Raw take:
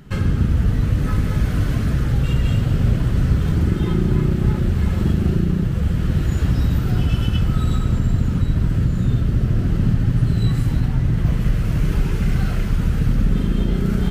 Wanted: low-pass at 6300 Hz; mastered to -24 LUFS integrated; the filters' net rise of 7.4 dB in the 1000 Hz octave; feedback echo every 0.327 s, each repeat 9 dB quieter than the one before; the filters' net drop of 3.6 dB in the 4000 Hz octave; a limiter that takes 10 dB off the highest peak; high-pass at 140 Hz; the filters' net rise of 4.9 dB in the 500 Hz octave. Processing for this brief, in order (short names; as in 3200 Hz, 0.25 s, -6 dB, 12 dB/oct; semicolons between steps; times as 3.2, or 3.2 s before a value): HPF 140 Hz; LPF 6300 Hz; bell 500 Hz +5 dB; bell 1000 Hz +9 dB; bell 4000 Hz -5.5 dB; limiter -17 dBFS; feedback echo 0.327 s, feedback 35%, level -9 dB; gain +1.5 dB